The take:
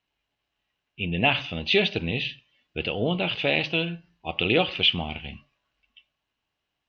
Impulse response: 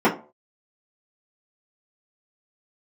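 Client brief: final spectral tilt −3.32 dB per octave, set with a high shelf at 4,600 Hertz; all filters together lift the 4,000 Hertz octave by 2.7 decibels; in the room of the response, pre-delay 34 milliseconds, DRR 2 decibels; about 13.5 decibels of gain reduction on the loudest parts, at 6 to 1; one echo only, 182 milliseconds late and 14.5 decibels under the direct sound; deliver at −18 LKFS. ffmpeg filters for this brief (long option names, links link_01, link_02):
-filter_complex "[0:a]equalizer=frequency=4000:width_type=o:gain=5.5,highshelf=frequency=4600:gain=-3.5,acompressor=threshold=-29dB:ratio=6,aecho=1:1:182:0.188,asplit=2[link_01][link_02];[1:a]atrim=start_sample=2205,adelay=34[link_03];[link_02][link_03]afir=irnorm=-1:irlink=0,volume=-22dB[link_04];[link_01][link_04]amix=inputs=2:normalize=0,volume=12.5dB"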